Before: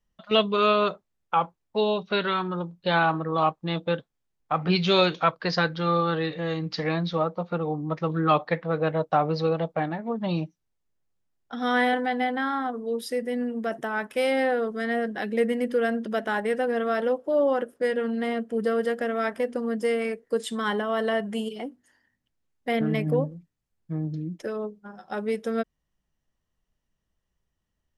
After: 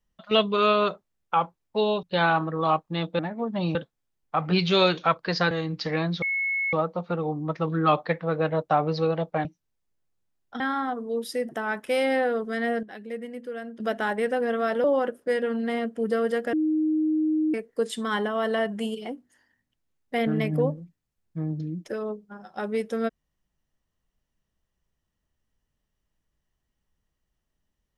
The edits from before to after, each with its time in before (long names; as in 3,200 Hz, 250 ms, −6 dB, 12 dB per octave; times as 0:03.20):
0:02.03–0:02.76: remove
0:05.68–0:06.44: remove
0:07.15: insert tone 2,190 Hz −23.5 dBFS 0.51 s
0:09.87–0:10.43: move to 0:03.92
0:11.58–0:12.37: remove
0:13.26–0:13.76: remove
0:15.10–0:16.07: clip gain −11 dB
0:17.11–0:17.38: remove
0:19.07–0:20.08: beep over 311 Hz −20.5 dBFS